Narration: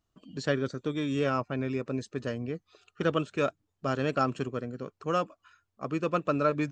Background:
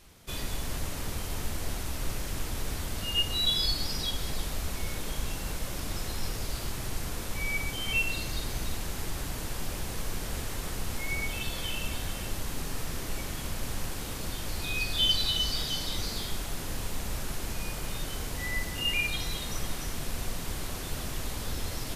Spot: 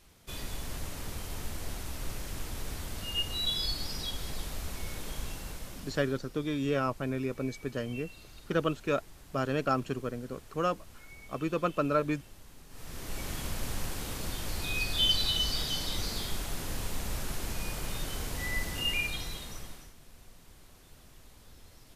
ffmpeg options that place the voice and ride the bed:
ffmpeg -i stem1.wav -i stem2.wav -filter_complex "[0:a]adelay=5500,volume=-1.5dB[link_01];[1:a]volume=13dB,afade=type=out:start_time=5.22:duration=1:silence=0.199526,afade=type=in:start_time=12.69:duration=0.63:silence=0.133352,afade=type=out:start_time=18.77:duration=1.17:silence=0.105925[link_02];[link_01][link_02]amix=inputs=2:normalize=0" out.wav

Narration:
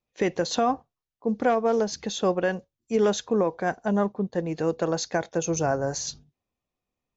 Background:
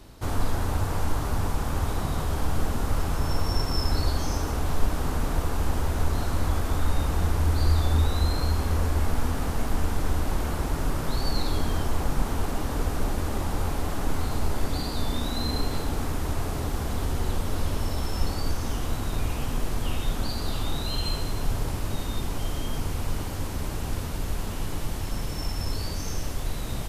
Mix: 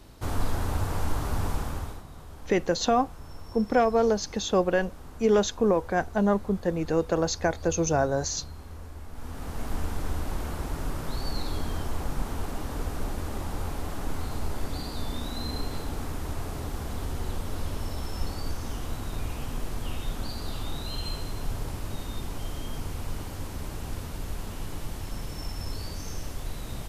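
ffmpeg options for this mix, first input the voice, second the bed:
ffmpeg -i stem1.wav -i stem2.wav -filter_complex "[0:a]adelay=2300,volume=0.5dB[link_01];[1:a]volume=10.5dB,afade=type=out:start_time=1.54:duration=0.49:silence=0.16788,afade=type=in:start_time=9.11:duration=0.62:silence=0.237137[link_02];[link_01][link_02]amix=inputs=2:normalize=0" out.wav

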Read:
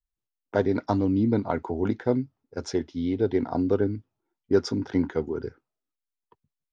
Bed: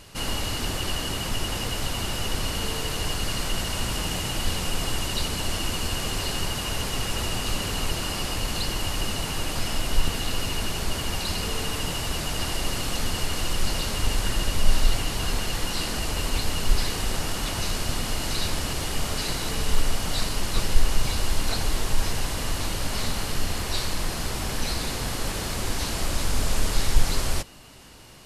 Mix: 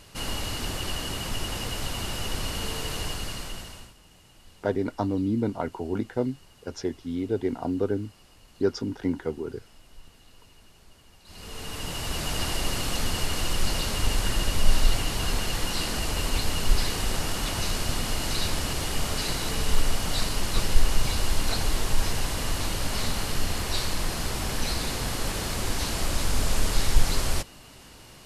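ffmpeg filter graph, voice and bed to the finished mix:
ffmpeg -i stem1.wav -i stem2.wav -filter_complex "[0:a]adelay=4100,volume=-3dB[link_01];[1:a]volume=23.5dB,afade=type=out:start_time=2.97:duration=0.97:silence=0.0630957,afade=type=in:start_time=11.24:duration=1.08:silence=0.0473151[link_02];[link_01][link_02]amix=inputs=2:normalize=0" out.wav

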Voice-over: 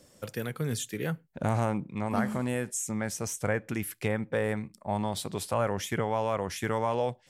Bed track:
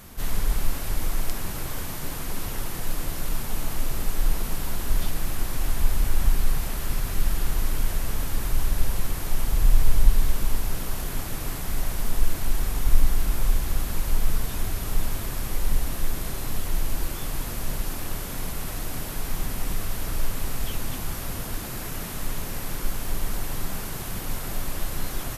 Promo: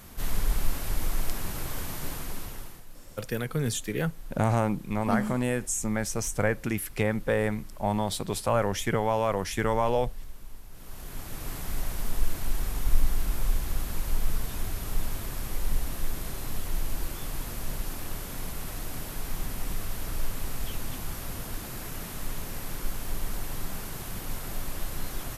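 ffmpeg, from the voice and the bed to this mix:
ffmpeg -i stem1.wav -i stem2.wav -filter_complex "[0:a]adelay=2950,volume=3dB[link_01];[1:a]volume=13.5dB,afade=type=out:start_time=2.08:duration=0.77:silence=0.125893,afade=type=in:start_time=10.71:duration=0.88:silence=0.158489[link_02];[link_01][link_02]amix=inputs=2:normalize=0" out.wav

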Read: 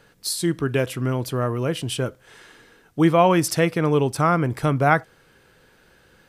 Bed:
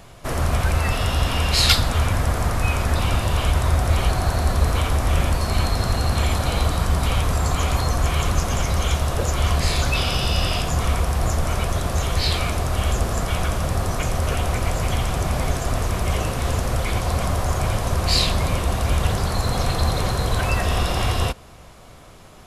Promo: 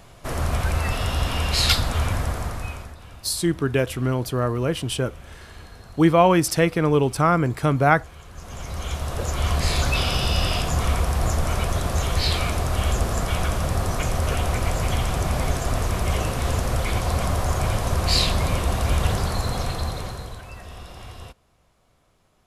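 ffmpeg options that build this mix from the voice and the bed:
ffmpeg -i stem1.wav -i stem2.wav -filter_complex "[0:a]adelay=3000,volume=0.5dB[link_01];[1:a]volume=19dB,afade=type=out:start_time=2.12:duration=0.84:silence=0.1,afade=type=in:start_time=8.31:duration=1.46:silence=0.0794328,afade=type=out:start_time=19.14:duration=1.28:silence=0.133352[link_02];[link_01][link_02]amix=inputs=2:normalize=0" out.wav

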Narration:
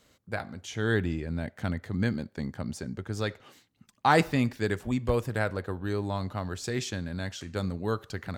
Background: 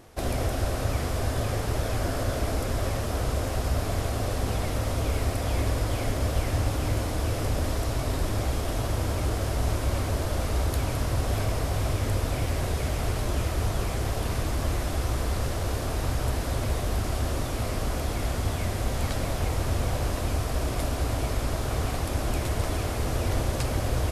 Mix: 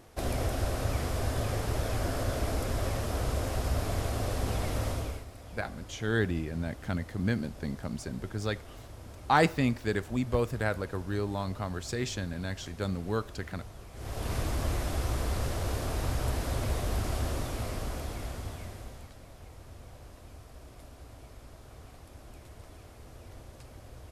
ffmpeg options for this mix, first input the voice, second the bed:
ffmpeg -i stem1.wav -i stem2.wav -filter_complex "[0:a]adelay=5250,volume=-1.5dB[link_01];[1:a]volume=12.5dB,afade=type=out:start_time=4.86:duration=0.39:silence=0.158489,afade=type=in:start_time=13.93:duration=0.42:silence=0.158489,afade=type=out:start_time=17.14:duration=1.97:silence=0.11885[link_02];[link_01][link_02]amix=inputs=2:normalize=0" out.wav

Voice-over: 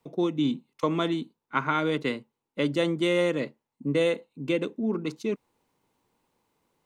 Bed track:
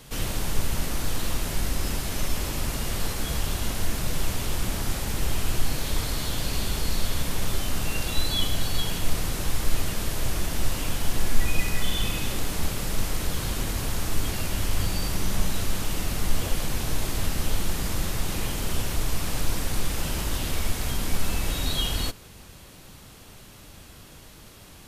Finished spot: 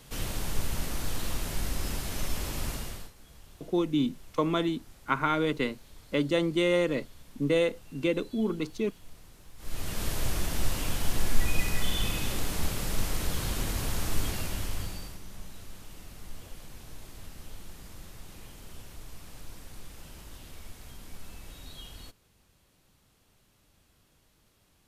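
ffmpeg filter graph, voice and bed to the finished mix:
ffmpeg -i stem1.wav -i stem2.wav -filter_complex "[0:a]adelay=3550,volume=-1dB[link_01];[1:a]volume=17.5dB,afade=type=out:start_time=2.69:duration=0.42:silence=0.0944061,afade=type=in:start_time=9.57:duration=0.49:silence=0.0749894,afade=type=out:start_time=14.2:duration=1:silence=0.158489[link_02];[link_01][link_02]amix=inputs=2:normalize=0" out.wav

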